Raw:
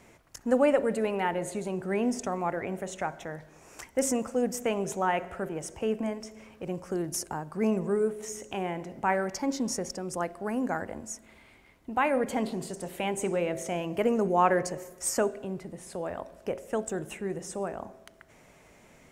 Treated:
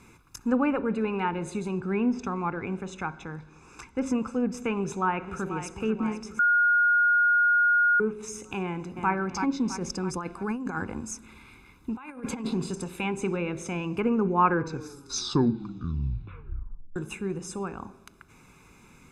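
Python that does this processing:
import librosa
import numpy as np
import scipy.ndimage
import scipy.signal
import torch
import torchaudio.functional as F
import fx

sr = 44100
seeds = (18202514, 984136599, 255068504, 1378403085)

y = fx.air_absorb(x, sr, metres=72.0, at=(1.8, 4.06))
y = fx.echo_throw(y, sr, start_s=4.78, length_s=0.92, ms=490, feedback_pct=65, wet_db=-10.5)
y = fx.echo_throw(y, sr, start_s=8.63, length_s=0.48, ms=330, feedback_pct=45, wet_db=-6.5)
y = fx.over_compress(y, sr, threshold_db=-32.0, ratio=-0.5, at=(9.78, 12.84))
y = fx.edit(y, sr, fx.bleep(start_s=6.39, length_s=1.61, hz=1430.0, db=-22.5),
    fx.tape_stop(start_s=14.42, length_s=2.54), tone=tone)
y = fx.env_lowpass_down(y, sr, base_hz=2300.0, full_db=-22.5)
y = y + 0.88 * np.pad(y, (int(0.8 * sr / 1000.0), 0))[:len(y)]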